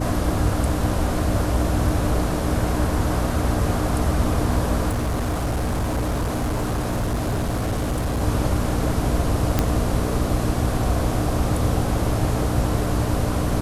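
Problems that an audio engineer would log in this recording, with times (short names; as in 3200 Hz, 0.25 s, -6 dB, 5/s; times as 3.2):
hum 60 Hz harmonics 5 -26 dBFS
4.89–8.22 clipped -19.5 dBFS
9.59 pop -5 dBFS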